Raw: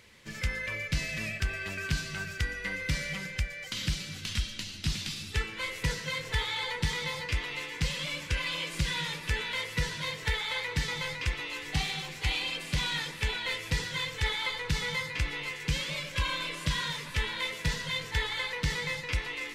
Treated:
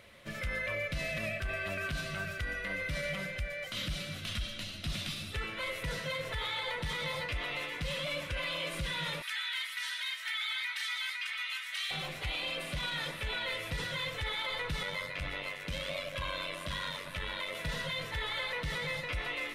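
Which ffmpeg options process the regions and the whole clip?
-filter_complex "[0:a]asettb=1/sr,asplit=3[a][b][c];[a]atrim=end=9.224[d];[b]atrim=start=9.22:end=11.91,asetpts=PTS-STARTPTS,afade=t=in:d=0.004:c=qsin,afade=t=out:st=2.686:d=0.004:c=qsin,highpass=f=1.4k:w=0.5412,highpass=f=1.4k:w=1.3066,aecho=1:1:3.2:0.76,atrim=end_sample=118629[e];[c]atrim=start=11.906[f];[d][e]acrossfade=d=0.004:c1=hsin:c2=qsin[g];[g][f]acrossfade=d=0.004:c1=qsin:c2=hsin,asettb=1/sr,asplit=3[h][i][j];[h]atrim=end=14.834[k];[i]atrim=start=14.83:end=17.55,asetpts=PTS-STARTPTS,afade=t=in:d=0.004:c=qsin,afade=t=out:st=2.716:d=0.004:c=qsin,tremolo=f=95:d=0.667,bandreject=f=50:t=h:w=6,bandreject=f=100:t=h:w=6,bandreject=f=150:t=h:w=6,bandreject=f=200:t=h:w=6,bandreject=f=250:t=h:w=6,bandreject=f=300:t=h:w=6,bandreject=f=350:t=h:w=6,bandreject=f=400:t=h:w=6,bandreject=f=450:t=h:w=6,bandreject=f=500:t=h:w=6[l];[j]atrim=start=17.546[m];[k][l]acrossfade=d=0.004:c1=hsin:c2=qsin[n];[n][m]acrossfade=d=0.004:c1=qsin:c2=hsin,superequalizer=8b=3.16:10b=1.58:14b=0.501:15b=0.447,alimiter=level_in=3dB:limit=-24dB:level=0:latency=1:release=32,volume=-3dB"

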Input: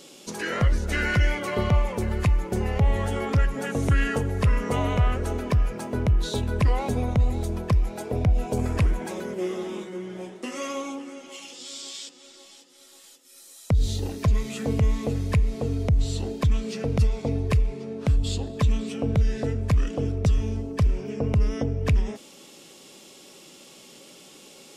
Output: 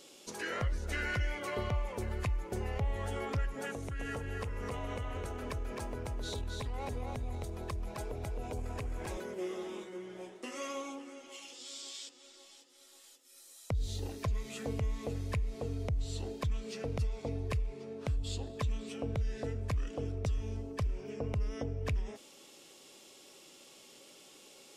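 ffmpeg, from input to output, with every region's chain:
-filter_complex "[0:a]asettb=1/sr,asplit=3[a][b][c];[a]atrim=end=3.734[d];[b]atrim=start=3.73:end=9.17,asetpts=PTS-STARTPTS,afade=t=in:d=0.004:c=qsin,afade=t=out:st=5.436:d=0.004:c=qsin,acompressor=threshold=-26dB:ratio=12:attack=3.2:release=140:knee=1:detection=peak,aecho=1:1:263:0.631,atrim=end_sample=239904[e];[c]atrim=start=9.166[f];[d][e]acrossfade=d=0.004:c1=hsin:c2=qsin[g];[g][f]acrossfade=d=0.004:c1=qsin:c2=hsin,equalizer=f=180:w=1.4:g=-7.5,acompressor=threshold=-25dB:ratio=2,volume=-7.5dB"

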